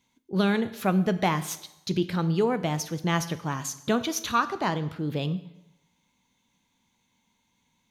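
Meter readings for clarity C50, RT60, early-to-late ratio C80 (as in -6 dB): 15.0 dB, 0.90 s, 17.0 dB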